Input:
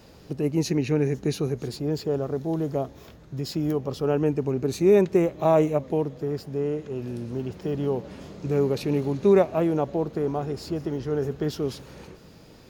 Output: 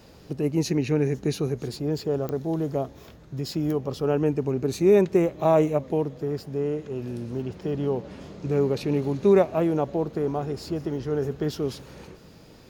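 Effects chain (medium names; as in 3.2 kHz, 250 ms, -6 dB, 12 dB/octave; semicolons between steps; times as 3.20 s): 7.42–9.03 s: treble shelf 9.9 kHz -7.5 dB; clicks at 2.29 s, -18 dBFS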